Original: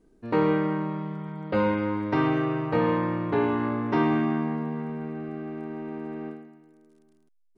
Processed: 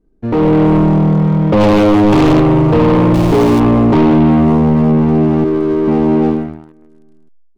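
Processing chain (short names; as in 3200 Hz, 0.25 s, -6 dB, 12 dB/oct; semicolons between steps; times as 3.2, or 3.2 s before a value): 1.6–2.4 sample leveller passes 3; 3.14–3.6 sample gate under -31 dBFS; 5.44–5.88 fixed phaser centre 750 Hz, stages 6; sample leveller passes 3; AGC gain up to 14 dB; tilt -2.5 dB/oct; soft clip -6.5 dBFS, distortion -9 dB; dynamic EQ 1600 Hz, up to -8 dB, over -32 dBFS, Q 1.8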